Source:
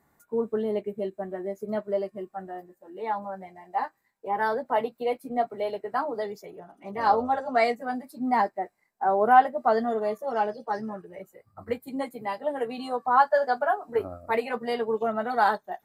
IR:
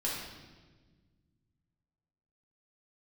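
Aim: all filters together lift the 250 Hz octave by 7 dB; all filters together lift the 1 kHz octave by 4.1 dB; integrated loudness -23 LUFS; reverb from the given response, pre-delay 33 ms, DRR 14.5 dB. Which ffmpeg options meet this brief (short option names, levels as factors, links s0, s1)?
-filter_complex "[0:a]equalizer=f=250:t=o:g=7.5,equalizer=f=1000:t=o:g=5,asplit=2[s0][s1];[1:a]atrim=start_sample=2205,adelay=33[s2];[s1][s2]afir=irnorm=-1:irlink=0,volume=0.106[s3];[s0][s3]amix=inputs=2:normalize=0,volume=1.06"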